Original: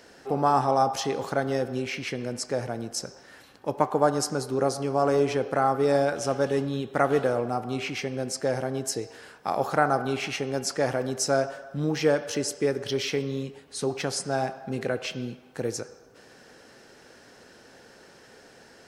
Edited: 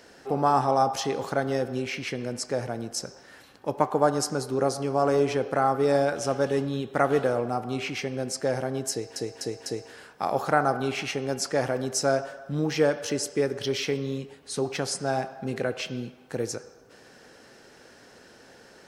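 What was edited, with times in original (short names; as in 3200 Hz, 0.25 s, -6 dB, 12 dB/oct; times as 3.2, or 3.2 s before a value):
8.91–9.16 loop, 4 plays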